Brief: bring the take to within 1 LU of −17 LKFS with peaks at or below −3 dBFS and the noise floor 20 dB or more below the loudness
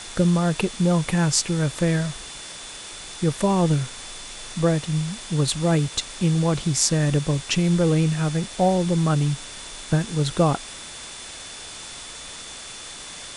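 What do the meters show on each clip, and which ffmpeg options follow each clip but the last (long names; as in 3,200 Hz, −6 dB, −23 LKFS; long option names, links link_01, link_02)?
interfering tone 3,500 Hz; level of the tone −43 dBFS; background noise floor −38 dBFS; target noise floor −42 dBFS; integrated loudness −22.0 LKFS; sample peak −5.0 dBFS; target loudness −17.0 LKFS
→ -af "bandreject=frequency=3500:width=30"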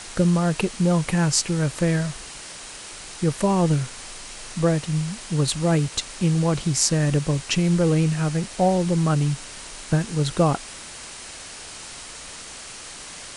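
interfering tone none found; background noise floor −39 dBFS; target noise floor −43 dBFS
→ -af "afftdn=noise_reduction=6:noise_floor=-39"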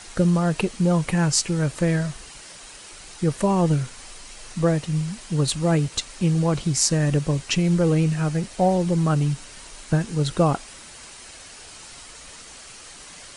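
background noise floor −43 dBFS; integrated loudness −22.5 LKFS; sample peak −5.0 dBFS; target loudness −17.0 LKFS
→ -af "volume=5.5dB,alimiter=limit=-3dB:level=0:latency=1"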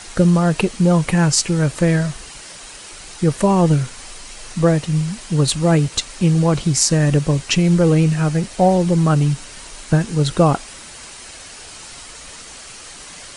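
integrated loudness −17.0 LKFS; sample peak −3.0 dBFS; background noise floor −38 dBFS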